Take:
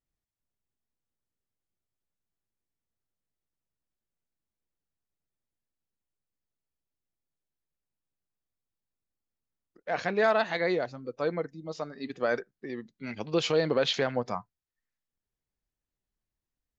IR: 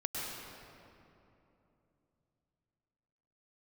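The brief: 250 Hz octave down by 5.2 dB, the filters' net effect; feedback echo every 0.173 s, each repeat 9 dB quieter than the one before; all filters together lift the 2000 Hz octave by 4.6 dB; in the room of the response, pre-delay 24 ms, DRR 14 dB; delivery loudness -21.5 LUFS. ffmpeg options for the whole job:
-filter_complex "[0:a]equalizer=f=250:t=o:g=-8,equalizer=f=2k:t=o:g=6,aecho=1:1:173|346|519|692:0.355|0.124|0.0435|0.0152,asplit=2[a][b];[1:a]atrim=start_sample=2205,adelay=24[c];[b][c]afir=irnorm=-1:irlink=0,volume=-18dB[d];[a][d]amix=inputs=2:normalize=0,volume=7.5dB"

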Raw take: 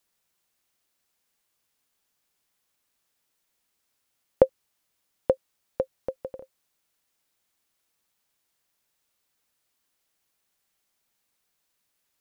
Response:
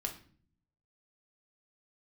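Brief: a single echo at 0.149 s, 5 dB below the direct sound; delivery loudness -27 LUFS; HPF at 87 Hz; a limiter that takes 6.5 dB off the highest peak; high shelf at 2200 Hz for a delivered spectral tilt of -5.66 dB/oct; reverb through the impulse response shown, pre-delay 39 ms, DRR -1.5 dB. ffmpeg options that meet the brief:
-filter_complex "[0:a]highpass=87,highshelf=f=2.2k:g=-7,alimiter=limit=-9dB:level=0:latency=1,aecho=1:1:149:0.562,asplit=2[a][b];[1:a]atrim=start_sample=2205,adelay=39[c];[b][c]afir=irnorm=-1:irlink=0,volume=1dB[d];[a][d]amix=inputs=2:normalize=0,volume=2.5dB"

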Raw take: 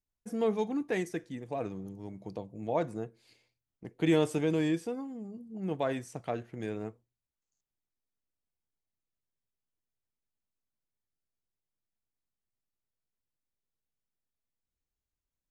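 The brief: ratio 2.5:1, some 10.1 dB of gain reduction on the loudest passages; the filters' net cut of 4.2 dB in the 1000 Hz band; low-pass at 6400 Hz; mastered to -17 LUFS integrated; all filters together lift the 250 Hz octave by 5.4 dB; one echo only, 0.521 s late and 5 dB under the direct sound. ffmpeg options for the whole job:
-af "lowpass=6.4k,equalizer=f=250:t=o:g=8,equalizer=f=1k:t=o:g=-7,acompressor=threshold=-33dB:ratio=2.5,aecho=1:1:521:0.562,volume=19dB"

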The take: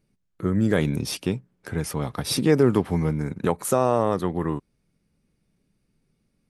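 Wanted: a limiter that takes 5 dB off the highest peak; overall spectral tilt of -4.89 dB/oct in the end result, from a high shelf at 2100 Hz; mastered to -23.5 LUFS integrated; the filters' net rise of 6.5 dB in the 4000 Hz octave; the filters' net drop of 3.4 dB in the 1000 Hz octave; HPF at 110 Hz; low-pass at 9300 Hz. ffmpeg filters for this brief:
-af "highpass=110,lowpass=9.3k,equalizer=f=1k:t=o:g=-5.5,highshelf=f=2.1k:g=4,equalizer=f=4k:t=o:g=4.5,volume=2.5dB,alimiter=limit=-10dB:level=0:latency=1"

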